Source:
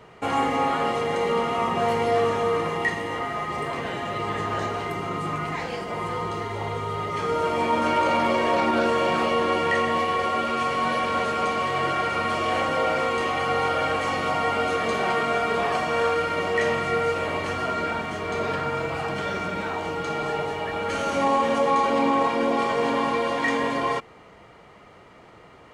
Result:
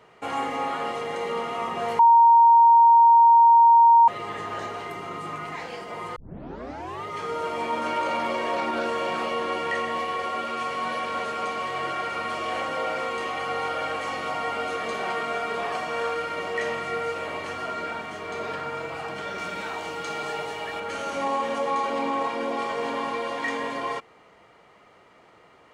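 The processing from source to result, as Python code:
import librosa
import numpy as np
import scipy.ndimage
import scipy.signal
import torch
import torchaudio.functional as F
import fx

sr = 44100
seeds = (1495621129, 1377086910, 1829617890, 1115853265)

y = fx.high_shelf(x, sr, hz=2500.0, db=7.5, at=(19.38, 20.8))
y = fx.edit(y, sr, fx.bleep(start_s=1.99, length_s=2.09, hz=930.0, db=-6.5),
    fx.tape_start(start_s=6.16, length_s=0.88), tone=tone)
y = fx.low_shelf(y, sr, hz=200.0, db=-10.0)
y = y * librosa.db_to_amplitude(-4.0)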